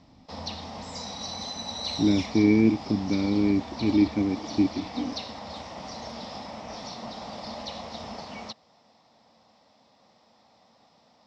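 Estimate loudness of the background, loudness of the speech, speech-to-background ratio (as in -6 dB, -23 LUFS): -37.0 LUFS, -25.0 LUFS, 12.0 dB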